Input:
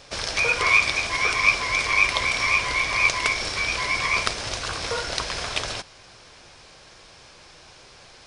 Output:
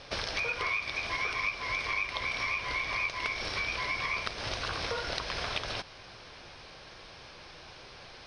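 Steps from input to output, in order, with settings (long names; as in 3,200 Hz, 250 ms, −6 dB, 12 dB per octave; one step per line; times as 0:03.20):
downward compressor 6 to 1, threshold −30 dBFS, peak gain reduction 16.5 dB
Savitzky-Golay smoothing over 15 samples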